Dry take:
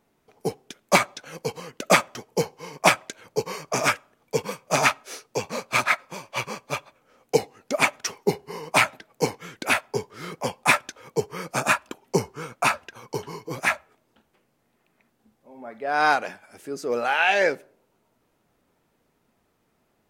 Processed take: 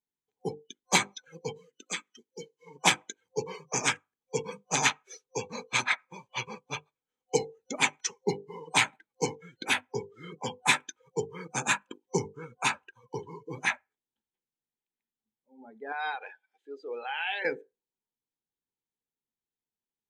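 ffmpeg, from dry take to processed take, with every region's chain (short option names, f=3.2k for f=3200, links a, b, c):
-filter_complex "[0:a]asettb=1/sr,asplit=3[a][b][c];[a]atrim=end=1.574[d];[b]atrim=start=1.57:end=2.67,asetpts=PTS-STARTPTS,afade=t=in:d=0.004:c=qsin,afade=t=out:st=1.096:d=0.004:c=qsin,highpass=250,equalizer=f=710:w=1.2:g=-14,acompressor=threshold=-40dB:ratio=1.5:attack=3.2:release=140:knee=1:detection=peak[e];[c]atrim=start=2.666[f];[d][e]acrossfade=d=0.004:c1=hsin:c2=qsin[g];[g][f]acrossfade=d=0.004:c1=qsin:c2=hsin,asettb=1/sr,asplit=3[h][i][j];[h]atrim=end=15.924[k];[i]atrim=start=15.92:end=17.45,asetpts=PTS-STARTPTS,afade=t=in:d=0.004:c=qsin,afade=t=out:st=1.526:d=0.004:c=qsin,highpass=450,highshelf=f=5.3k:t=q:w=1.5:g=-11,acompressor=threshold=-28dB:ratio=2:attack=3.2:release=140:knee=1:detection=peak[l];[j]atrim=start=17.446[m];[k][l]acrossfade=d=0.004:c1=hsin:c2=qsin[n];[n][m]acrossfade=d=0.004:c1=qsin:c2=hsin,bandreject=f=50:t=h:w=6,bandreject=f=100:t=h:w=6,bandreject=f=150:t=h:w=6,bandreject=f=200:t=h:w=6,bandreject=f=250:t=h:w=6,bandreject=f=300:t=h:w=6,bandreject=f=350:t=h:w=6,bandreject=f=400:t=h:w=6,bandreject=f=450:t=h:w=6,bandreject=f=500:t=h:w=6,afftdn=nr=26:nf=-35,superequalizer=8b=0.282:10b=0.501:13b=2.24:15b=2.51,volume=-5dB"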